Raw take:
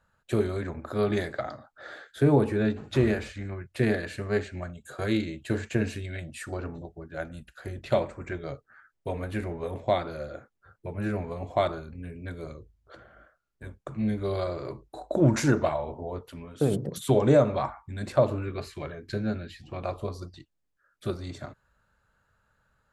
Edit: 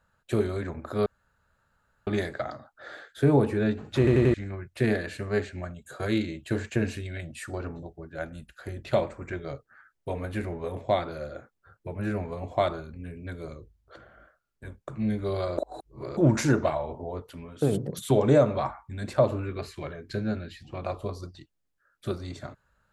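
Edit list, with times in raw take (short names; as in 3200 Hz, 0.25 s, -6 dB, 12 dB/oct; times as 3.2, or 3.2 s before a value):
1.06 insert room tone 1.01 s
2.97 stutter in place 0.09 s, 4 plays
14.57–15.16 reverse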